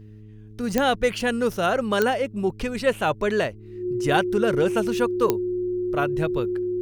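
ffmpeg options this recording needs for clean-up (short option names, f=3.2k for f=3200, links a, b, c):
-af "adeclick=t=4,bandreject=f=106.6:t=h:w=4,bandreject=f=213.2:t=h:w=4,bandreject=f=319.8:t=h:w=4,bandreject=f=426.4:t=h:w=4,bandreject=f=360:w=30"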